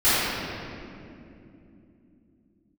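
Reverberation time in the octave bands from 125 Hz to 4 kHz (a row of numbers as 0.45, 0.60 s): 4.3 s, n/a, 3.4 s, 2.2 s, 2.1 s, 1.6 s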